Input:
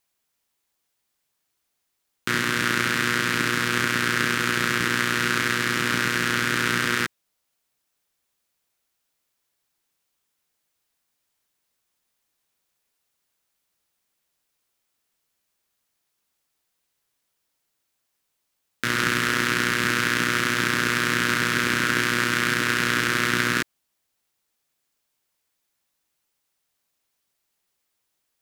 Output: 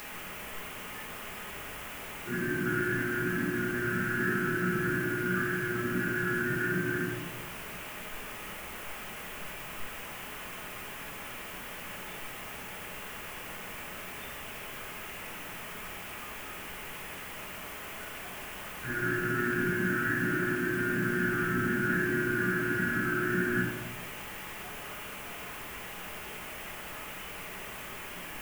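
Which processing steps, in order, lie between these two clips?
one-bit delta coder 16 kbps, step -17 dBFS; spectral noise reduction 14 dB; simulated room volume 430 m³, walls mixed, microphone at 1.4 m; added noise blue -39 dBFS; trim -8.5 dB

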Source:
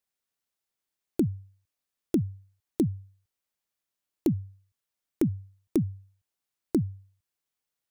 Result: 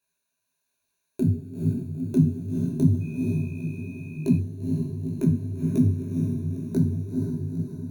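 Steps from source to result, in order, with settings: peak limiter -22.5 dBFS, peak gain reduction 8.5 dB; rippled EQ curve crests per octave 1.5, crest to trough 15 dB; echo that smears into a reverb 464 ms, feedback 57%, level -4 dB; two-slope reverb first 0.45 s, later 4.4 s, from -17 dB, DRR 2 dB; 3.00–4.36 s: whistle 2.5 kHz -52 dBFS; detune thickener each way 41 cents; trim +6.5 dB

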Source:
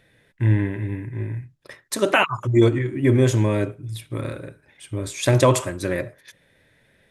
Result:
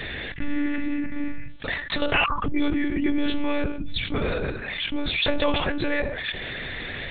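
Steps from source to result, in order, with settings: treble shelf 2.5 kHz +11.5 dB; monotone LPC vocoder at 8 kHz 290 Hz; level flattener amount 70%; trim -8 dB

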